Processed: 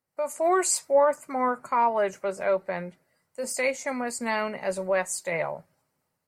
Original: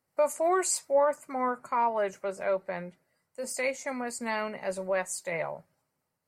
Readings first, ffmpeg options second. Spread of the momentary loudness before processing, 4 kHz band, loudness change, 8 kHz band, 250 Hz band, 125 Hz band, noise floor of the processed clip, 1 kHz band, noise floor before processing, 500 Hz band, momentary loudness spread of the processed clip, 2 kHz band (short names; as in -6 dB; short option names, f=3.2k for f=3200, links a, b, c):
12 LU, +4.0 dB, +3.5 dB, +3.5 dB, +3.5 dB, +4.0 dB, -79 dBFS, +3.5 dB, -82 dBFS, +3.5 dB, 12 LU, +4.0 dB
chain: -af "dynaudnorm=f=240:g=3:m=9.5dB,volume=-5.5dB"